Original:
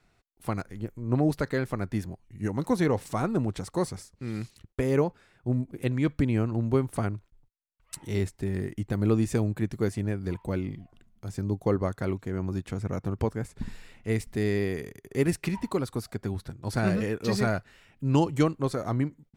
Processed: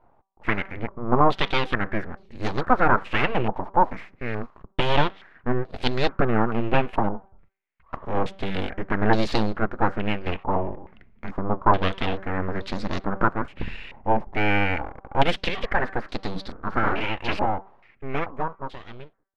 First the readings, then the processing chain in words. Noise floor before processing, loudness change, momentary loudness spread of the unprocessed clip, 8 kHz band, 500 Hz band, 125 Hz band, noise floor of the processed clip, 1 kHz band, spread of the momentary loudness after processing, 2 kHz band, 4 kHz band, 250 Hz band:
−68 dBFS, +3.5 dB, 11 LU, can't be measured, +2.5 dB, −2.5 dB, −60 dBFS, +13.5 dB, 13 LU, +11.0 dB, +12.0 dB, −0.5 dB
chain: fade-out on the ending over 3.31 s
hum removal 193.3 Hz, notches 7
dynamic equaliser 180 Hz, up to −5 dB, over −42 dBFS, Q 2.1
full-wave rectification
low-pass on a step sequencer 2.3 Hz 890–4,200 Hz
level +7.5 dB

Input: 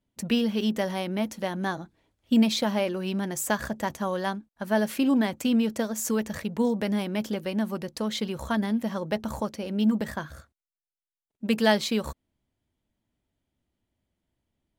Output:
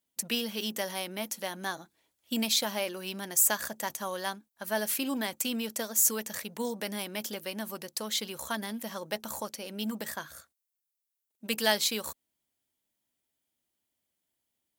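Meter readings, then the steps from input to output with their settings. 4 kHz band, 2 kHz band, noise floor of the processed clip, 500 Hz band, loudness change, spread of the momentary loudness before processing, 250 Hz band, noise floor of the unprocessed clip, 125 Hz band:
+1.5 dB, −2.0 dB, −85 dBFS, −7.0 dB, −4.0 dB, 9 LU, −12.0 dB, below −85 dBFS, −13.0 dB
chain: RIAA equalisation recording
harmonic generator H 4 −44 dB, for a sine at −4 dBFS
level −4.5 dB

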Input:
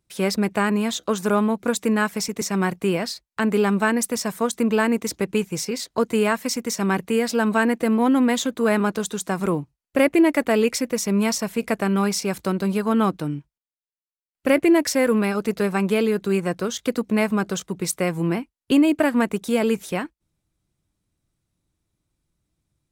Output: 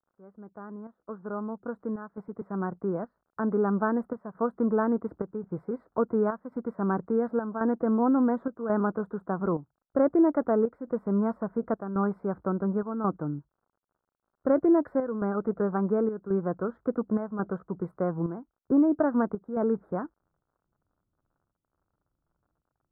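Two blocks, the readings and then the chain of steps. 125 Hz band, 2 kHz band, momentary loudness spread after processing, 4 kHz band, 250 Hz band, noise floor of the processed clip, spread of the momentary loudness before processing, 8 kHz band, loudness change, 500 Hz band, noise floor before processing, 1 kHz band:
−6.5 dB, −16.5 dB, 12 LU, below −40 dB, −6.0 dB, −85 dBFS, 8 LU, below −40 dB, −6.5 dB, −6.0 dB, below −85 dBFS, −7.0 dB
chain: fade in at the beginning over 3.96 s
square-wave tremolo 0.92 Hz, depth 60%, duty 80%
surface crackle 65 per second −47 dBFS
elliptic low-pass filter 1,400 Hz, stop band 50 dB
level −4.5 dB

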